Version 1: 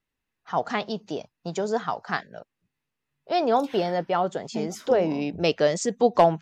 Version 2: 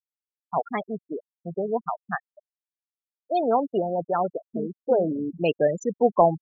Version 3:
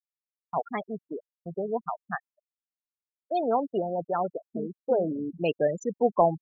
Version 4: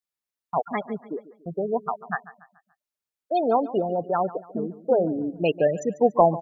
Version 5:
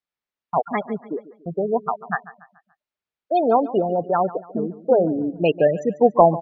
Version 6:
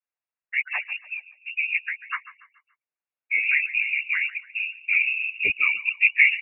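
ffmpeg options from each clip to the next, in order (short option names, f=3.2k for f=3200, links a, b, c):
-af "afftfilt=real='re*gte(hypot(re,im),0.126)':imag='im*gte(hypot(re,im),0.126)':win_size=1024:overlap=0.75"
-af "agate=range=-33dB:threshold=-38dB:ratio=3:detection=peak,volume=-3.5dB"
-af "aecho=1:1:143|286|429|572:0.141|0.0593|0.0249|0.0105,volume=4dB"
-af "lowpass=3.5k,volume=4dB"
-af "afftfilt=real='hypot(re,im)*cos(2*PI*random(0))':imag='hypot(re,im)*sin(2*PI*random(1))':win_size=512:overlap=0.75,lowpass=f=2.5k:t=q:w=0.5098,lowpass=f=2.5k:t=q:w=0.6013,lowpass=f=2.5k:t=q:w=0.9,lowpass=f=2.5k:t=q:w=2.563,afreqshift=-2900,volume=1.5dB"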